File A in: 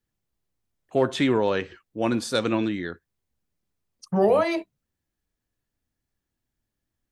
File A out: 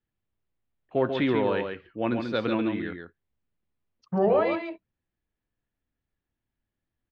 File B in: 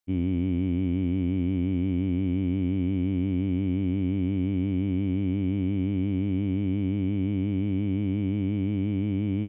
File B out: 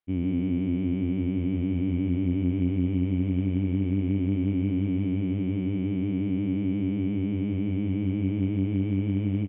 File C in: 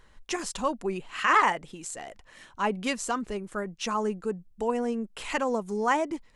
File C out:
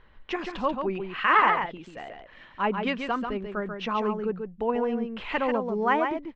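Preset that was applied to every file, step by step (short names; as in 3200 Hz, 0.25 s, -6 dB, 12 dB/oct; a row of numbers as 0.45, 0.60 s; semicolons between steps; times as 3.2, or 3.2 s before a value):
LPF 3400 Hz 24 dB/oct; on a send: echo 0.139 s -6 dB; on the sum: match loudness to -27 LUFS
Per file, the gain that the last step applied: -3.0, -1.0, +1.0 dB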